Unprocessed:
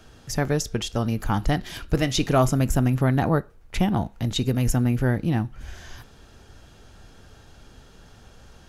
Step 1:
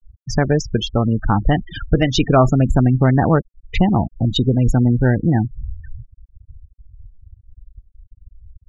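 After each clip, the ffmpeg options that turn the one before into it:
-filter_complex "[0:a]asplit=2[s0][s1];[s1]acompressor=threshold=0.0355:ratio=8,volume=1.19[s2];[s0][s2]amix=inputs=2:normalize=0,afftfilt=real='re*gte(hypot(re,im),0.0794)':imag='im*gte(hypot(re,im),0.0794)':win_size=1024:overlap=0.75,lowpass=4600,volume=1.68"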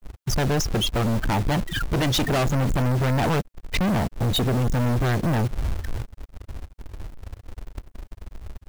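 -af "acontrast=72,asoftclip=type=hard:threshold=0.158,acrusher=bits=2:mode=log:mix=0:aa=0.000001,volume=0.75"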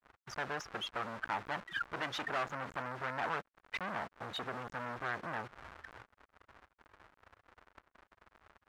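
-af "bandpass=f=1400:t=q:w=1.5:csg=0,volume=0.531"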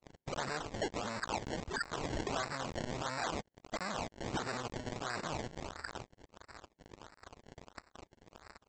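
-af "alimiter=level_in=3.76:limit=0.0631:level=0:latency=1:release=48,volume=0.266,aresample=16000,acrusher=samples=9:mix=1:aa=0.000001:lfo=1:lforange=9:lforate=1.5,aresample=44100,volume=2.51"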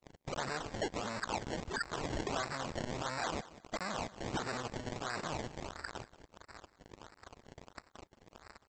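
-af "aecho=1:1:184|368:0.133|0.028"

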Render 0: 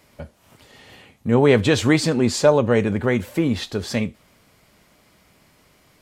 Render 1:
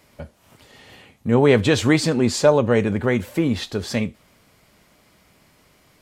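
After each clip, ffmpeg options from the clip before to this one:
-af anull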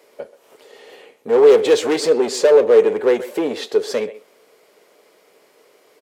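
-filter_complex "[0:a]asplit=2[s0][s1];[s1]adelay=130,highpass=300,lowpass=3400,asoftclip=type=hard:threshold=0.251,volume=0.141[s2];[s0][s2]amix=inputs=2:normalize=0,asoftclip=type=hard:threshold=0.141,highpass=f=440:t=q:w=4.9"

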